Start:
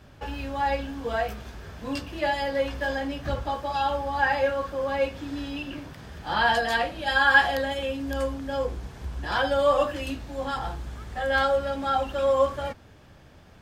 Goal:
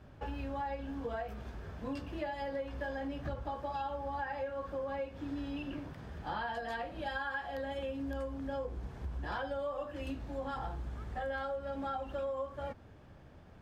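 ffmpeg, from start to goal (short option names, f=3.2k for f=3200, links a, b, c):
-af "highshelf=f=2.3k:g=-11.5,acompressor=threshold=-31dB:ratio=12,volume=-3.5dB"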